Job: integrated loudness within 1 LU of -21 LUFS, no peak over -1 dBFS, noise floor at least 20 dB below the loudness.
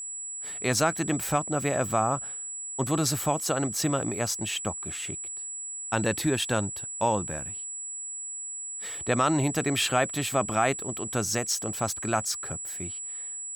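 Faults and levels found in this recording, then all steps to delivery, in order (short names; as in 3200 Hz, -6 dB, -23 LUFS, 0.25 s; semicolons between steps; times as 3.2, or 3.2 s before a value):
steady tone 7800 Hz; tone level -34 dBFS; loudness -28.0 LUFS; peak -10.5 dBFS; loudness target -21.0 LUFS
-> notch 7800 Hz, Q 30; gain +7 dB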